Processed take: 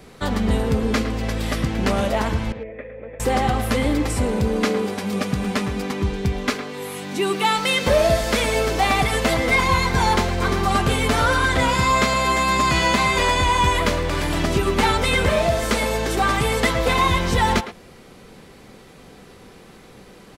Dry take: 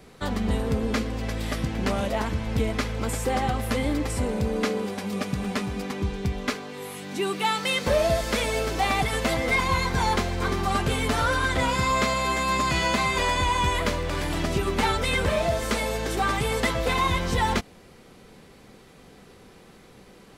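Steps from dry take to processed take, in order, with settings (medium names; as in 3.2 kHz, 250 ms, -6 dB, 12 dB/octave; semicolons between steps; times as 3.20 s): 2.52–3.20 s: cascade formant filter e; speakerphone echo 110 ms, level -10 dB; trim +5 dB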